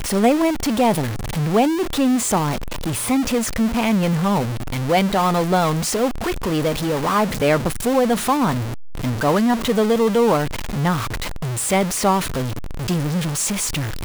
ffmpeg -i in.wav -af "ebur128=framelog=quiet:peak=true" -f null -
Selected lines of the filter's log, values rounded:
Integrated loudness:
  I:         -19.8 LUFS
  Threshold: -29.8 LUFS
Loudness range:
  LRA:         1.4 LU
  Threshold: -39.8 LUFS
  LRA low:   -20.6 LUFS
  LRA high:  -19.1 LUFS
True peak:
  Peak:       -3.4 dBFS